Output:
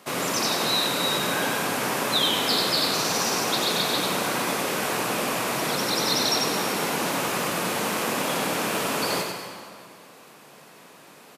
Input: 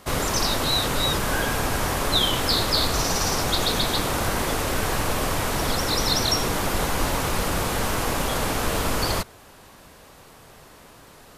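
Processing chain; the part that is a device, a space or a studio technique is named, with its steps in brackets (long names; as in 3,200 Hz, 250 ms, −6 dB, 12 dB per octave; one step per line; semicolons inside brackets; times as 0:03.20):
PA in a hall (high-pass filter 160 Hz 24 dB per octave; parametric band 2,500 Hz +4 dB 0.31 octaves; single-tap delay 94 ms −4.5 dB; convolution reverb RT60 2.0 s, pre-delay 112 ms, DRR 7 dB)
level −2.5 dB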